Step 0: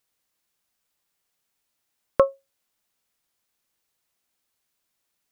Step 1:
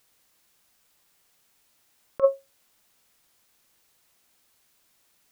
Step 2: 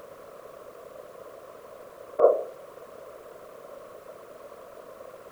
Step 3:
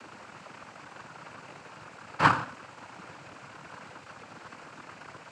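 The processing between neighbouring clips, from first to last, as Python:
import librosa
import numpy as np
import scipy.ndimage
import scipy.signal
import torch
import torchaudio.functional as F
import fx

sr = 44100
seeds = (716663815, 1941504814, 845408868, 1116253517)

y1 = fx.over_compress(x, sr, threshold_db=-23.0, ratio=-0.5)
y1 = y1 * librosa.db_to_amplitude(5.0)
y2 = fx.bin_compress(y1, sr, power=0.4)
y2 = scipy.signal.sosfilt(scipy.signal.butter(2, 79.0, 'highpass', fs=sr, output='sos'), y2)
y2 = fx.whisperise(y2, sr, seeds[0])
y3 = np.abs(y2)
y3 = scipy.signal.sosfilt(scipy.signal.butter(2, 130.0, 'highpass', fs=sr, output='sos'), y3)
y3 = fx.noise_vocoder(y3, sr, seeds[1], bands=8)
y3 = y3 * librosa.db_to_amplitude(4.0)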